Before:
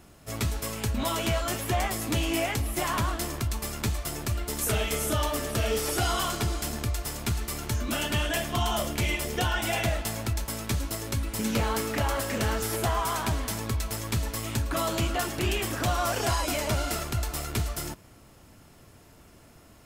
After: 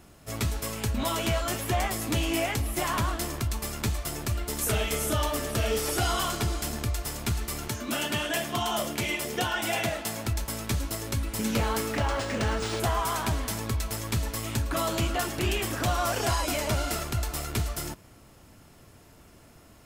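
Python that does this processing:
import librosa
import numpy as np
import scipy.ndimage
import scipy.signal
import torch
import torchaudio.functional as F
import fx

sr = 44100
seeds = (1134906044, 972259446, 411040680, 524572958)

y = fx.highpass(x, sr, hz=140.0, slope=12, at=(7.68, 10.26))
y = fx.resample_linear(y, sr, factor=3, at=(11.97, 12.8))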